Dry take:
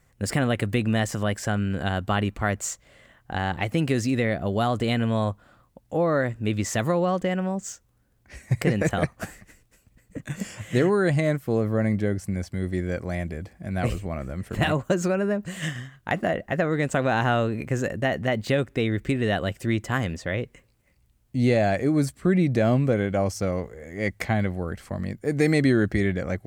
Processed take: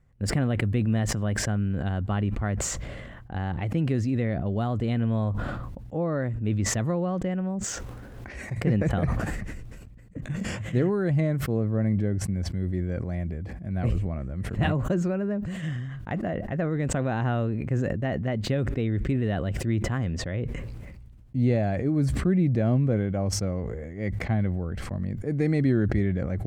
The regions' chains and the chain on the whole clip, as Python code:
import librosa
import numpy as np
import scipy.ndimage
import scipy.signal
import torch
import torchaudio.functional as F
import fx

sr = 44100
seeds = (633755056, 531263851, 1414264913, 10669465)

y = fx.chain(x, sr, fx.bass_treble(bass_db=-12, treble_db=-2),
    fx.pre_swell(db_per_s=32.0), at=(7.64, 8.58))
y = fx.lowpass(y, sr, hz=2700.0, slope=6)
y = fx.low_shelf(y, sr, hz=290.0, db=11.0)
y = fx.sustainer(y, sr, db_per_s=28.0)
y = F.gain(torch.from_numpy(y), -9.0).numpy()